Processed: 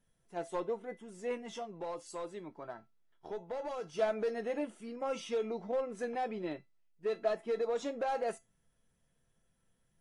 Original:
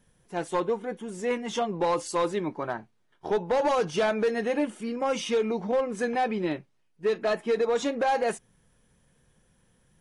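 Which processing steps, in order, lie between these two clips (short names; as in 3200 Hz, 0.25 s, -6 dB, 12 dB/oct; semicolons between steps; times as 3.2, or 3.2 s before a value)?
1.49–3.99 compressor 2:1, threshold -33 dBFS, peak gain reduction 6.5 dB; resonator 670 Hz, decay 0.22 s, harmonics all, mix 80%; dynamic EQ 520 Hz, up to +5 dB, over -47 dBFS, Q 0.81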